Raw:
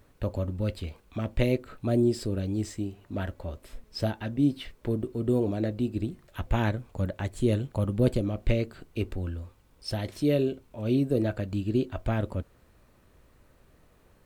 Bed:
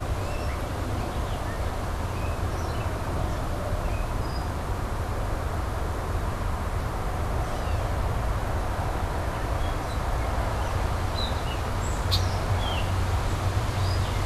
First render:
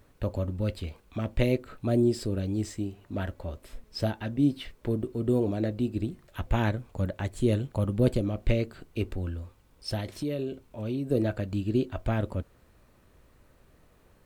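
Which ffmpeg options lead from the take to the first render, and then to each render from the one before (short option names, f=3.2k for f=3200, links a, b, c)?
-filter_complex "[0:a]asettb=1/sr,asplit=3[a][b][c];[a]atrim=end=10.004[d];[b]atrim=start=10:end=11.11,asetpts=PTS-STARTPTS,afade=t=in:d=0.004:c=qsin,afade=t=out:st=1.106:d=0.004:c=qsin,acompressor=threshold=-29dB:ratio=3:attack=3.2:release=140:knee=1:detection=peak[e];[c]atrim=start=11.106[f];[d][e]acrossfade=d=0.004:c1=hsin:c2=qsin[g];[g][f]acrossfade=d=0.004:c1=qsin:c2=hsin"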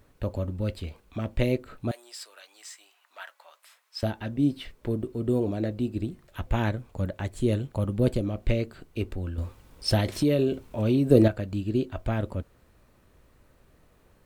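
-filter_complex "[0:a]asettb=1/sr,asplit=3[a][b][c];[a]atrim=end=1.914[d];[b]atrim=start=1.91:end=4.03,asetpts=PTS-STARTPTS,afade=t=in:d=0.004:c=qsin,afade=t=out:st=2.116:d=0.004:c=qsin,highpass=f=920:w=0.5412,highpass=f=920:w=1.3066[e];[c]atrim=start=4.026[f];[d][e]acrossfade=d=0.004:c1=hsin:c2=qsin[g];[g][f]acrossfade=d=0.004:c1=qsin:c2=hsin,asplit=3[h][i][j];[h]atrim=end=9.382[k];[i]atrim=start=9.378:end=11.282,asetpts=PTS-STARTPTS,volume=8.5dB[l];[j]atrim=start=11.278[m];[k][l]acrossfade=d=0.004:c1=hsin:c2=hsin[n];[n][m]acrossfade=d=0.004:c1=hsin:c2=hsin"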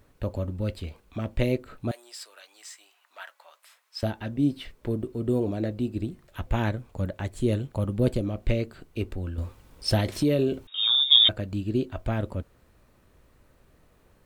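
-filter_complex "[0:a]asettb=1/sr,asplit=3[a][b][c];[a]atrim=end=10.674[d];[b]atrim=start=10.67:end=11.29,asetpts=PTS-STARTPTS,afade=t=in:d=0.004:c=qsin,afade=t=out:st=0.616:d=0.004:c=qsin,lowpass=f=3.2k:t=q:w=0.5098,lowpass=f=3.2k:t=q:w=0.6013,lowpass=f=3.2k:t=q:w=0.9,lowpass=f=3.2k:t=q:w=2.563,afreqshift=-3800[e];[c]atrim=start=11.286[f];[d][e]acrossfade=d=0.004:c1=hsin:c2=qsin[g];[g][f]acrossfade=d=0.004:c1=qsin:c2=hsin"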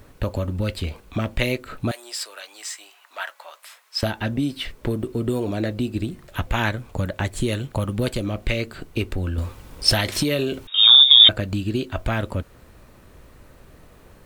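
-filter_complex "[0:a]acrossover=split=1000[a][b];[a]acompressor=threshold=-33dB:ratio=6[c];[c][b]amix=inputs=2:normalize=0,alimiter=level_in=11.5dB:limit=-1dB:release=50:level=0:latency=1"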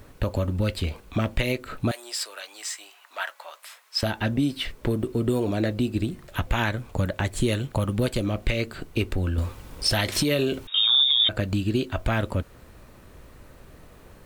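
-af "alimiter=limit=-12dB:level=0:latency=1:release=103"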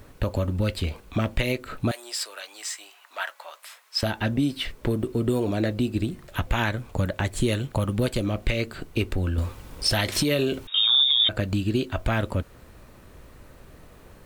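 -af anull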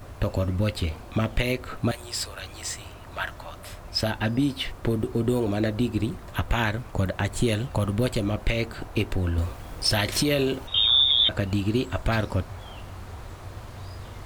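-filter_complex "[1:a]volume=-14dB[a];[0:a][a]amix=inputs=2:normalize=0"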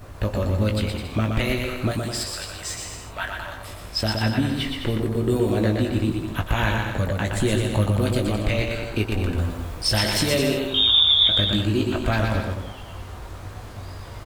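-filter_complex "[0:a]asplit=2[a][b];[b]adelay=19,volume=-7dB[c];[a][c]amix=inputs=2:normalize=0,aecho=1:1:120|210|277.5|328.1|366.1:0.631|0.398|0.251|0.158|0.1"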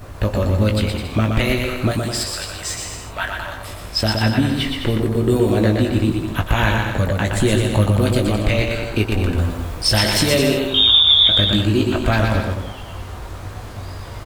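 -af "volume=5dB,alimiter=limit=-3dB:level=0:latency=1"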